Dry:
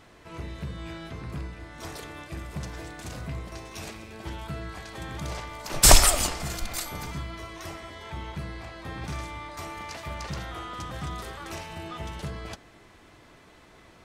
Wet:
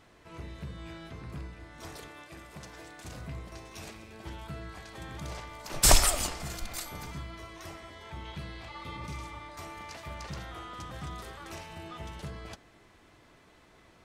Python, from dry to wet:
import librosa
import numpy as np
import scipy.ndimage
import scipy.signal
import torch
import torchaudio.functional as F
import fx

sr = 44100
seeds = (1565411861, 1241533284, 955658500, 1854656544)

y = fx.low_shelf(x, sr, hz=180.0, db=-12.0, at=(2.08, 3.05))
y = fx.spec_repair(y, sr, seeds[0], start_s=8.71, length_s=0.68, low_hz=580.0, high_hz=2100.0, source='after')
y = fx.peak_eq(y, sr, hz=3400.0, db=7.0, octaves=0.97, at=(8.25, 8.97))
y = y * 10.0 ** (-5.5 / 20.0)